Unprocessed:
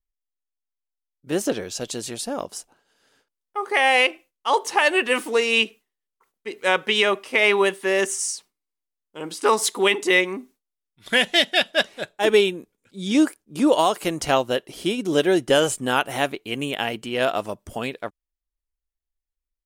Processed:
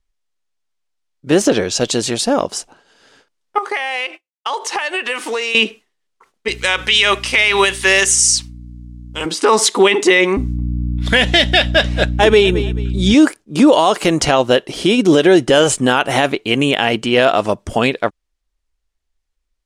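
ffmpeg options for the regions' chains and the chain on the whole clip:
-filter_complex "[0:a]asettb=1/sr,asplit=3[a][b][c];[a]atrim=end=3.584[d];[b]atrim=start=3.58:end=5.55,asetpts=PTS-STARTPTS,afade=t=in:d=0.004:c=qsin,afade=t=out:st=1.966:d=0.004:c=qsin,agate=range=-33dB:threshold=-37dB:ratio=3:release=100:detection=peak,highpass=f=820:p=1,acompressor=threshold=-30dB:ratio=10:attack=3.2:release=140:knee=1:detection=peak[e];[c]atrim=start=5.546[f];[d][e]acrossfade=d=0.004:c1=hsin:c2=qsin[g];[g][f]acrossfade=d=0.004:c1=qsin:c2=hsin,asettb=1/sr,asplit=3[h][i][j];[h]atrim=end=6.484[k];[i]atrim=start=6.48:end=9.26,asetpts=PTS-STARTPTS,afade=t=in:d=0.004:c=qsin,afade=t=out:st=2.776:d=0.004:c=qsin,tiltshelf=f=1.4k:g=-9.5,acompressor=threshold=-20dB:ratio=2.5:attack=3.2:release=140:knee=1:detection=peak,aeval=exprs='val(0)+0.00501*(sin(2*PI*60*n/s)+sin(2*PI*2*60*n/s)/2+sin(2*PI*3*60*n/s)/3+sin(2*PI*4*60*n/s)/4+sin(2*PI*5*60*n/s)/5)':c=same[l];[j]atrim=start=9.256[m];[k][l]acrossfade=d=0.004:c1=hsin:c2=qsin[n];[n][m]acrossfade=d=0.004:c1=qsin:c2=hsin,asettb=1/sr,asplit=3[o][p][q];[o]atrim=end=10.374[r];[p]atrim=start=10.37:end=13.14,asetpts=PTS-STARTPTS,afade=t=in:d=0.004:c=qsin,afade=t=out:st=2.766:d=0.004:c=qsin,aeval=exprs='val(0)+0.0251*(sin(2*PI*60*n/s)+sin(2*PI*2*60*n/s)/2+sin(2*PI*3*60*n/s)/3+sin(2*PI*4*60*n/s)/4+sin(2*PI*5*60*n/s)/5)':c=same,aecho=1:1:216|432:0.1|0.028,atrim=end_sample=122157[s];[q]atrim=start=13.136[t];[r][s]acrossfade=d=0.004:c1=hsin:c2=qsin[u];[u][t]acrossfade=d=0.004:c1=qsin:c2=hsin,lowpass=7.4k,alimiter=level_in=14.5dB:limit=-1dB:release=50:level=0:latency=1,volume=-1dB"

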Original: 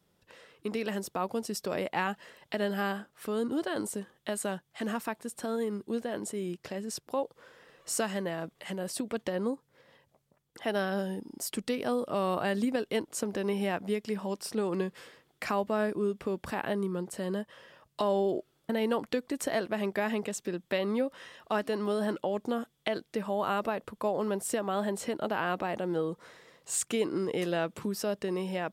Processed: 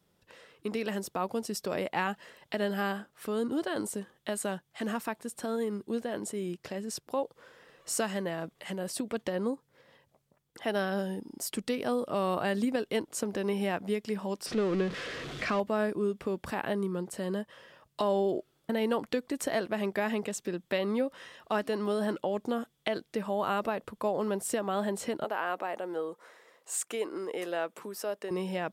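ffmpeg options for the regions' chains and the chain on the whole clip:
-filter_complex "[0:a]asettb=1/sr,asplit=3[a][b][c];[a]atrim=end=14.464[d];[b]atrim=start=14.46:end=15.6,asetpts=PTS-STARTPTS,afade=t=in:d=0.004:c=qsin,afade=t=out:st=1.136:d=0.004:c=qsin,aeval=exprs='val(0)+0.5*0.0237*sgn(val(0))':c=same,lowpass=4.4k,equalizer=f=870:t=o:w=0.28:g=-10.5[e];[c]atrim=start=15.596[f];[d][e]acrossfade=d=0.004:c1=hsin:c2=qsin[g];[g][f]acrossfade=d=0.004:c1=qsin:c2=hsin,asettb=1/sr,asplit=3[h][i][j];[h]atrim=end=25.244[k];[i]atrim=start=25.24:end=28.31,asetpts=PTS-STARTPTS,afade=t=in:d=0.004:c=qsin,afade=t=out:st=3.066:d=0.004:c=qsin,highpass=440,equalizer=f=4.2k:t=o:w=1.6:g=-6[l];[j]atrim=start=28.306[m];[k][l]acrossfade=d=0.004:c1=hsin:c2=qsin[n];[n][m]acrossfade=d=0.004:c1=qsin:c2=hsin"

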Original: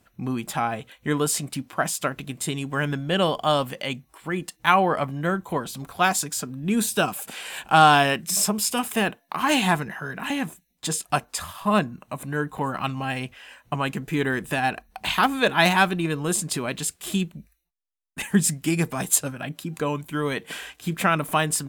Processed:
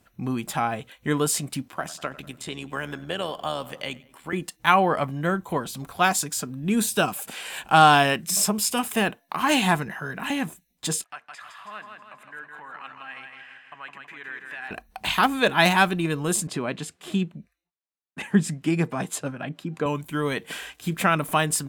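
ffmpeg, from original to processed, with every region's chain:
-filter_complex "[0:a]asettb=1/sr,asplit=3[a][b][c];[a]atrim=end=1.684[d];[b]atrim=start=1.68:end=4.33,asetpts=PTS-STARTPTS,afade=t=in:d=0.004:c=qsin,afade=t=out:st=2.646:d=0.004:c=qsin,asplit=2[e][f];[f]adelay=96,lowpass=f=3.5k:p=1,volume=-20dB,asplit=2[g][h];[h]adelay=96,lowpass=f=3.5k:p=1,volume=0.48,asplit=2[i][j];[j]adelay=96,lowpass=f=3.5k:p=1,volume=0.48,asplit=2[k][l];[l]adelay=96,lowpass=f=3.5k:p=1,volume=0.48[m];[e][g][i][k][m]amix=inputs=5:normalize=0,atrim=end_sample=116865,acrossover=split=320|5900[n][o][p];[n]acompressor=threshold=-39dB:ratio=4[q];[o]acompressor=threshold=-24dB:ratio=4[r];[p]acompressor=threshold=-45dB:ratio=4[s];[q][r][s]amix=inputs=3:normalize=0,tremolo=f=78:d=0.519[t];[c]atrim=start=4.326[u];[d][t]acrossfade=d=0.004:c1=hsin:c2=qsin[v];[v][u]acrossfade=d=0.004:c1=qsin:c2=hsin,asettb=1/sr,asplit=3[w][x][y];[w]atrim=end=11.044[z];[x]atrim=start=11.04:end=14.71,asetpts=PTS-STARTPTS,afade=t=in:d=0.004:c=qsin,afade=t=out:st=3.666:d=0.004:c=qsin,acompressor=threshold=-33dB:ratio=2:attack=3.2:release=140:knee=1:detection=peak,bandpass=f=1.8k:t=q:w=1.8,aecho=1:1:161|322|483|644|805|966:0.562|0.287|0.146|0.0746|0.038|0.0194,atrim=end_sample=161847[aa];[y]atrim=start=14.706[ab];[z][aa]acrossfade=d=0.004:c1=hsin:c2=qsin[ac];[ac][ab]acrossfade=d=0.004:c1=qsin:c2=hsin,asettb=1/sr,asplit=3[ad][ae][af];[ad]atrim=end=16.474[ag];[ae]atrim=start=16.47:end=19.86,asetpts=PTS-STARTPTS,afade=t=in:d=0.004:c=qsin,afade=t=out:st=3.386:d=0.004:c=qsin,highpass=120,aemphasis=mode=reproduction:type=75fm[ah];[af]atrim=start=19.856[ai];[ag][ah]acrossfade=d=0.004:c1=hsin:c2=qsin[aj];[aj][ai]acrossfade=d=0.004:c1=qsin:c2=hsin"

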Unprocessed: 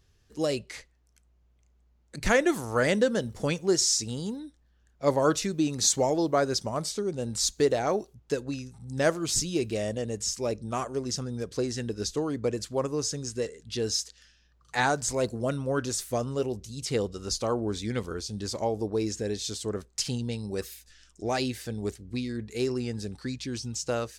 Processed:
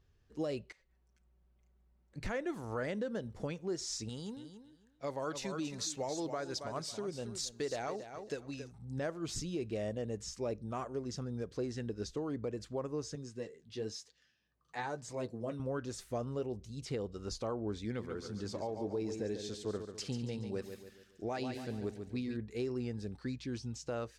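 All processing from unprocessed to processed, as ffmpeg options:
-filter_complex "[0:a]asettb=1/sr,asplit=3[a][b][c];[a]atrim=end=0.724[d];[b]atrim=start=0.72:end=2.16,asetpts=PTS-STARTPTS,afade=t=in:d=0.004:c=qsin,afade=t=out:st=1.436:d=0.004:c=qsin,lowpass=10k,aecho=1:1:5.3:0.74,atrim=end_sample=63504,acompressor=threshold=-58dB:ratio=16:attack=3.2:release=140:knee=1:detection=peak[e];[c]atrim=start=2.156[f];[d][e]acrossfade=d=0.004:c1=hsin:c2=qsin[g];[g][f]acrossfade=d=0.004:c1=qsin:c2=hsin,asettb=1/sr,asplit=3[h][i][j];[h]atrim=end=4.094[k];[i]atrim=start=4.09:end=8.72,asetpts=PTS-STARTPTS,afade=t=in:d=0.004:c=qsin,afade=t=out:st=4.626:d=0.004:c=qsin,tiltshelf=f=1.4k:g=-5.5,aecho=1:1:275|550|825:0.282|0.0535|0.0102,atrim=end_sample=204183[l];[j]atrim=start=8.716[m];[k][l]acrossfade=d=0.004:c1=hsin:c2=qsin[n];[n][m]acrossfade=d=0.004:c1=qsin:c2=hsin,asettb=1/sr,asplit=3[o][p][q];[o]atrim=end=13.154[r];[p]atrim=start=13.15:end=15.6,asetpts=PTS-STARTPTS,afade=t=in:d=0.004:c=qsin,afade=t=out:st=2.446:d=0.004:c=qsin,highpass=110,bandreject=f=1.4k:w=9,flanger=delay=5.8:depth=6.9:regen=-39:speed=1:shape=triangular[s];[q]atrim=start=15.596[t];[r][s]acrossfade=d=0.004:c1=hsin:c2=qsin[u];[u][t]acrossfade=d=0.004:c1=qsin:c2=hsin,asettb=1/sr,asplit=3[v][w][x];[v]atrim=end=17.854[y];[w]atrim=start=17.85:end=22.37,asetpts=PTS-STARTPTS,afade=t=in:d=0.004:c=qsin,afade=t=out:st=4.516:d=0.004:c=qsin,highpass=f=93:p=1,aecho=1:1:141|282|423|564|705:0.376|0.158|0.0663|0.0278|0.0117,atrim=end_sample=199332[z];[x]atrim=start=22.366[aa];[y][z]acrossfade=d=0.004:c1=hsin:c2=qsin[ab];[ab][aa]acrossfade=d=0.004:c1=qsin:c2=hsin,lowpass=f=2.1k:p=1,alimiter=limit=-23dB:level=0:latency=1:release=243,volume=-5dB"

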